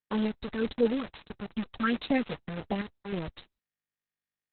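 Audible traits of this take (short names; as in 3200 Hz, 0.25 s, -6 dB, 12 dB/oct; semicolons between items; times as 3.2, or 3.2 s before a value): chopped level 0.64 Hz, depth 60%, duty 80%; phasing stages 4, 1.6 Hz, lowest notch 360–2200 Hz; a quantiser's noise floor 6-bit, dither none; Opus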